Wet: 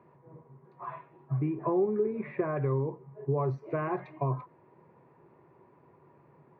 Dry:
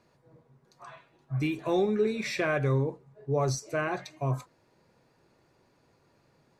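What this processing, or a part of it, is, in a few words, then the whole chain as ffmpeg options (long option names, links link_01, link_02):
bass amplifier: -filter_complex "[0:a]acompressor=threshold=-34dB:ratio=4,highpass=85,equalizer=frequency=150:width_type=q:width=4:gain=7,equalizer=frequency=380:width_type=q:width=4:gain=8,equalizer=frequency=1000:width_type=q:width=4:gain=9,equalizer=frequency=1500:width_type=q:width=4:gain=-5,lowpass=frequency=2100:width=0.5412,lowpass=frequency=2100:width=1.3066,asplit=3[link_01][link_02][link_03];[link_01]afade=type=out:start_time=1.39:duration=0.02[link_04];[link_02]lowpass=1500,afade=type=in:start_time=1.39:duration=0.02,afade=type=out:start_time=2.55:duration=0.02[link_05];[link_03]afade=type=in:start_time=2.55:duration=0.02[link_06];[link_04][link_05][link_06]amix=inputs=3:normalize=0,volume=3dB"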